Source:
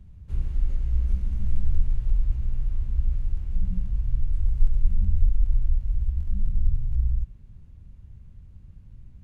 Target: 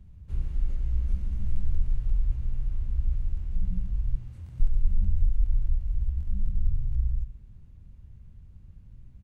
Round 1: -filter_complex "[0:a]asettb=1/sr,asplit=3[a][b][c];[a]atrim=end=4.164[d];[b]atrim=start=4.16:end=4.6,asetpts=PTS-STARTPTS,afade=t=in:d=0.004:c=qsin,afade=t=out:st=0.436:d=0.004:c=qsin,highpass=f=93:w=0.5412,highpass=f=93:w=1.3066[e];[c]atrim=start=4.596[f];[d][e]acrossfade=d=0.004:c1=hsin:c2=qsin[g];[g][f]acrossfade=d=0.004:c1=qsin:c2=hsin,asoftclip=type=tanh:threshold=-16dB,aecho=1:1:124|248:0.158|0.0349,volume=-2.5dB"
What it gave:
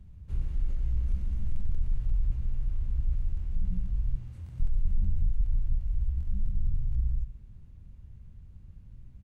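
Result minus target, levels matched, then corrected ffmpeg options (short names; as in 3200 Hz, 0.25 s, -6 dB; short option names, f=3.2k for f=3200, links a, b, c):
soft clip: distortion +16 dB
-filter_complex "[0:a]asettb=1/sr,asplit=3[a][b][c];[a]atrim=end=4.164[d];[b]atrim=start=4.16:end=4.6,asetpts=PTS-STARTPTS,afade=t=in:d=0.004:c=qsin,afade=t=out:st=0.436:d=0.004:c=qsin,highpass=f=93:w=0.5412,highpass=f=93:w=1.3066[e];[c]atrim=start=4.596[f];[d][e]acrossfade=d=0.004:c1=hsin:c2=qsin[g];[g][f]acrossfade=d=0.004:c1=qsin:c2=hsin,asoftclip=type=tanh:threshold=-5dB,aecho=1:1:124|248:0.158|0.0349,volume=-2.5dB"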